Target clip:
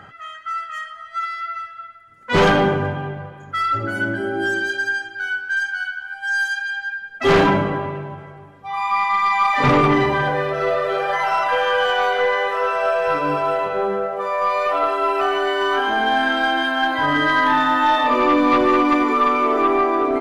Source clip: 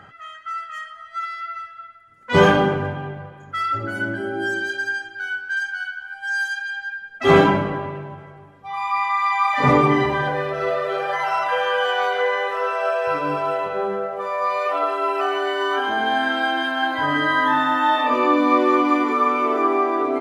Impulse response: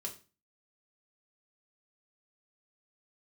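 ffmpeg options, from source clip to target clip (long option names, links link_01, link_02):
-af "aeval=exprs='0.891*(cos(1*acos(clip(val(0)/0.891,-1,1)))-cos(1*PI/2))+0.355*(cos(2*acos(clip(val(0)/0.891,-1,1)))-cos(2*PI/2))+0.355*(cos(5*acos(clip(val(0)/0.891,-1,1)))-cos(5*PI/2))':channel_layout=same,volume=-6.5dB"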